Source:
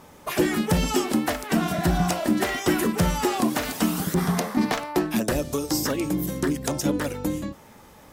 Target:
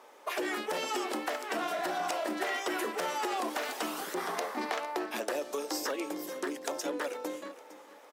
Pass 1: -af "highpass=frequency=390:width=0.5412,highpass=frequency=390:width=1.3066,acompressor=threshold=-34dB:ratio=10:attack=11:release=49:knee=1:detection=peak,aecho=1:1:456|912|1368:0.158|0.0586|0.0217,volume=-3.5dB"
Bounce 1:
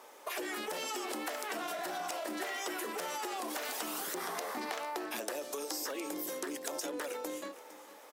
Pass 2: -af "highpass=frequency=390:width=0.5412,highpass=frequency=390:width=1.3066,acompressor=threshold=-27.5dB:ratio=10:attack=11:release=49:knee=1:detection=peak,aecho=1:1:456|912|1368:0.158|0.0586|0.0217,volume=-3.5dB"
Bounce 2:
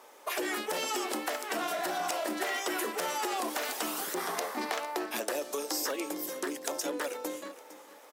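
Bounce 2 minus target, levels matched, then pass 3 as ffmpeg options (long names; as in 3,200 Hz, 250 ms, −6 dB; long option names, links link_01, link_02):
8,000 Hz band +4.5 dB
-af "highpass=frequency=390:width=0.5412,highpass=frequency=390:width=1.3066,highshelf=frequency=5900:gain=-9.5,acompressor=threshold=-27.5dB:ratio=10:attack=11:release=49:knee=1:detection=peak,aecho=1:1:456|912|1368:0.158|0.0586|0.0217,volume=-3.5dB"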